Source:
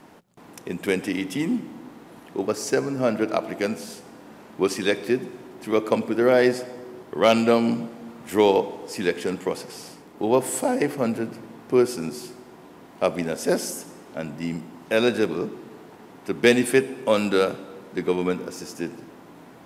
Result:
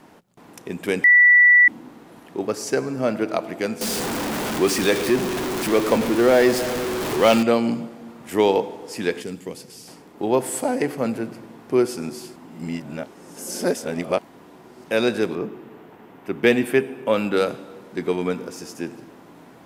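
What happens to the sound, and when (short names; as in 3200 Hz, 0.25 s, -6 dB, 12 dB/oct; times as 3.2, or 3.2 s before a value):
1.04–1.68 bleep 1960 Hz -9 dBFS
3.81–7.43 zero-crossing step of -20.5 dBFS
9.22–9.88 bell 1000 Hz -12 dB 2.9 oct
12.36–14.84 reverse
15.35–17.37 band shelf 6500 Hz -9 dB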